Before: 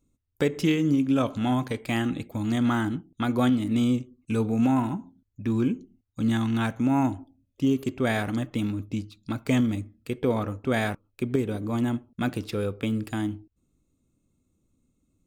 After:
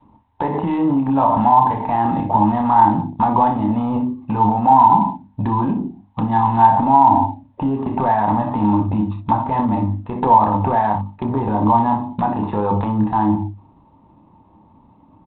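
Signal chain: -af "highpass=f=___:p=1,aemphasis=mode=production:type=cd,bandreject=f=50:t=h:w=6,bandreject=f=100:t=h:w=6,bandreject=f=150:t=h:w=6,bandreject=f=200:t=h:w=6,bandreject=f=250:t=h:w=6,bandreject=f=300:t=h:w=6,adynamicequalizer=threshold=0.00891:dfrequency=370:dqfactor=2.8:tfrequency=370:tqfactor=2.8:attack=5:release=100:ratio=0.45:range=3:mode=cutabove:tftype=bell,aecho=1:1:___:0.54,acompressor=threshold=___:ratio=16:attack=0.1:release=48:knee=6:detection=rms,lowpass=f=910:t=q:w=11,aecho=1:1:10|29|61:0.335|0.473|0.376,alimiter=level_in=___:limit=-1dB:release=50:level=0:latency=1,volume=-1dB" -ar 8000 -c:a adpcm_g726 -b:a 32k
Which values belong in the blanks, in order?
210, 1.1, -38dB, 23.5dB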